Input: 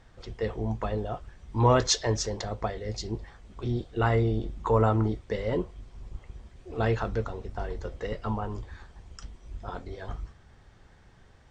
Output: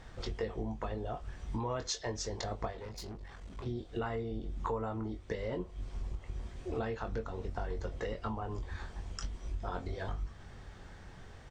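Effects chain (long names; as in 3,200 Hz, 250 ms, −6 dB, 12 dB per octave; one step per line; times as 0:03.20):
downward compressor 8 to 1, threshold −39 dBFS, peak gain reduction 21.5 dB
0:02.70–0:03.66: tube saturation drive 45 dB, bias 0.6
double-tracking delay 22 ms −7 dB
level +4.5 dB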